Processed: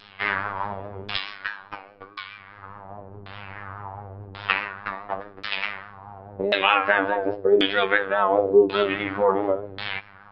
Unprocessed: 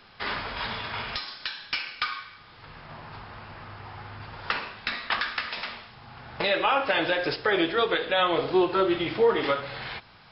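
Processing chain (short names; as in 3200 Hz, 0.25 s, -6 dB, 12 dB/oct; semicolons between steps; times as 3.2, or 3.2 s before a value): robotiser 99.5 Hz; LFO low-pass saw down 0.92 Hz 340–3900 Hz; vibrato 4.8 Hz 61 cents; gain +4 dB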